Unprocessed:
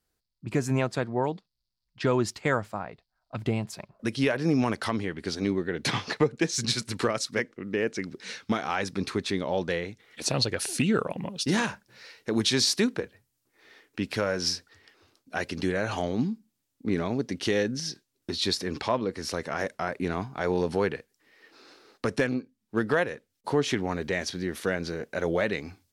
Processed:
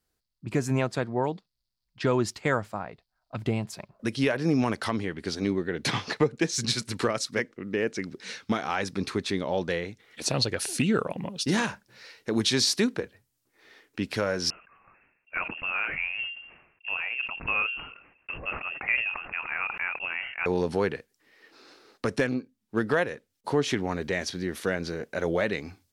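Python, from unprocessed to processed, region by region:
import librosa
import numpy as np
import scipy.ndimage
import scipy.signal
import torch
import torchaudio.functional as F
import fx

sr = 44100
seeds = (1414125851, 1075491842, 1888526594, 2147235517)

y = fx.chain(x, sr, fx.highpass(hz=360.0, slope=12),
    fx.freq_invert(carrier_hz=3000),
    fx.sustainer(db_per_s=70.0), at=(14.5, 20.46))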